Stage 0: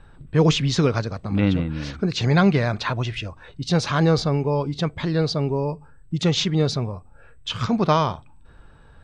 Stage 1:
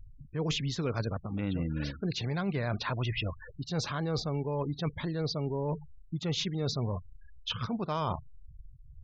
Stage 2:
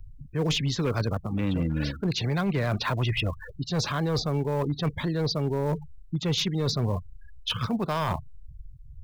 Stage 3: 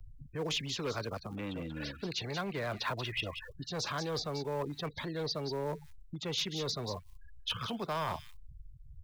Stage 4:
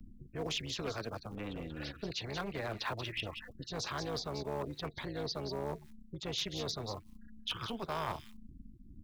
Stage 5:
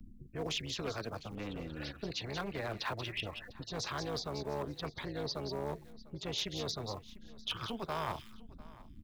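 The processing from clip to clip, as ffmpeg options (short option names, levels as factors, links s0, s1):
-af "afftfilt=real='re*gte(hypot(re,im),0.02)':imag='im*gte(hypot(re,im),0.02)':win_size=1024:overlap=0.75,areverse,acompressor=threshold=0.0355:ratio=10,areverse"
-filter_complex "[0:a]acrossover=split=300|600|1500[s0][s1][s2][s3];[s2]acrusher=bits=4:mode=log:mix=0:aa=0.000001[s4];[s0][s1][s4][s3]amix=inputs=4:normalize=0,asoftclip=type=hard:threshold=0.0501,volume=2"
-filter_complex "[0:a]acrossover=split=320|390|2200[s0][s1][s2][s3];[s0]acompressor=threshold=0.0158:ratio=6[s4];[s3]aecho=1:1:184:0.473[s5];[s4][s1][s2][s5]amix=inputs=4:normalize=0,volume=0.501"
-af "tremolo=f=220:d=0.788,volume=1.12"
-af "aecho=1:1:699:0.0944"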